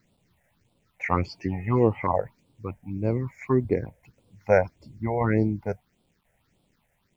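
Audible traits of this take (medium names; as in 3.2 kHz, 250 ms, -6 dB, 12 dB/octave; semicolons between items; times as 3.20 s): tremolo saw down 0.96 Hz, depth 35%; a quantiser's noise floor 12-bit, dither none; phasing stages 6, 1.7 Hz, lowest notch 290–1800 Hz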